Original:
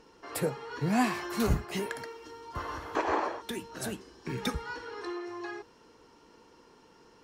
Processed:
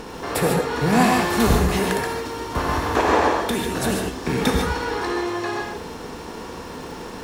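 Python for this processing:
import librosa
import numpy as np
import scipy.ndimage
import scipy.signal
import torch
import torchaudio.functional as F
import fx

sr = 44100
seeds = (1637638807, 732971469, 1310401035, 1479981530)

y = fx.bin_compress(x, sr, power=0.6)
y = fx.dmg_crackle(y, sr, seeds[0], per_s=140.0, level_db=-43.0)
y = fx.rev_gated(y, sr, seeds[1], gate_ms=170, shape='rising', drr_db=2.0)
y = y * 10.0 ** (6.5 / 20.0)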